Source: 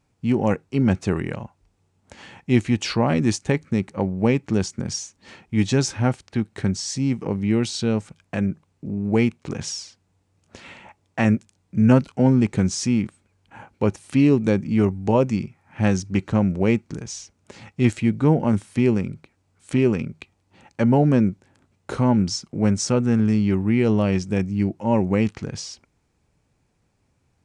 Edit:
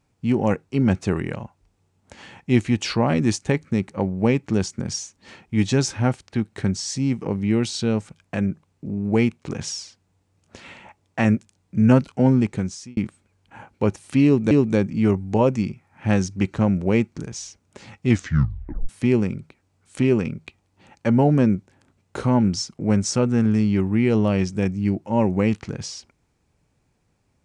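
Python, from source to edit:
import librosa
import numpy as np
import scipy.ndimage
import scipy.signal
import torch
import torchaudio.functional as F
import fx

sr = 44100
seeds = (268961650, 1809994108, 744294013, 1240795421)

y = fx.edit(x, sr, fx.fade_out_span(start_s=12.34, length_s=0.63),
    fx.repeat(start_s=14.25, length_s=0.26, count=2),
    fx.tape_stop(start_s=17.83, length_s=0.8), tone=tone)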